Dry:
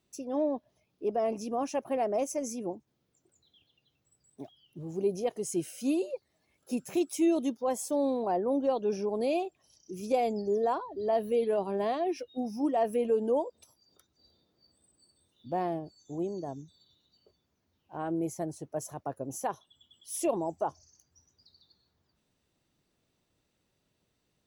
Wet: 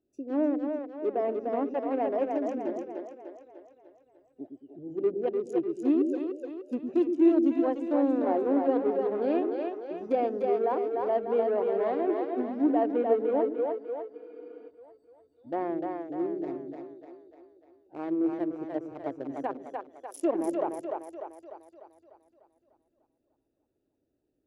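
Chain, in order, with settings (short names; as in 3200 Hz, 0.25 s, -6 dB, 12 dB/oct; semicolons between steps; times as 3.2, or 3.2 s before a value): Wiener smoothing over 41 samples; treble ducked by the level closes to 2200 Hz, closed at -29 dBFS; resonant low shelf 230 Hz -6.5 dB, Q 3; on a send: split-band echo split 370 Hz, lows 0.111 s, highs 0.298 s, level -3.5 dB; on the sum: spectral freeze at 14.17, 0.51 s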